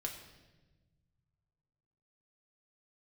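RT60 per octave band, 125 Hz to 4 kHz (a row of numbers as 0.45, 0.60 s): 2.9, 2.0, 1.4, 1.0, 1.1, 1.0 s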